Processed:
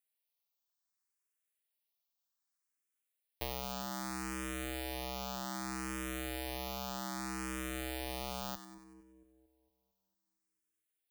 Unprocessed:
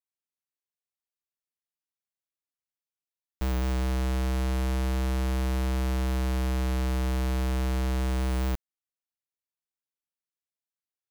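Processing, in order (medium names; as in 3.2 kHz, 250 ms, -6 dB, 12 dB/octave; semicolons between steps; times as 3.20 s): RIAA curve recording; compression 3:1, threshold -32 dBFS, peak gain reduction 7 dB; treble shelf 4 kHz -10.5 dB; on a send: two-band feedback delay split 770 Hz, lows 227 ms, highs 95 ms, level -11 dB; on the sum: barber-pole phaser +0.64 Hz; trim +5 dB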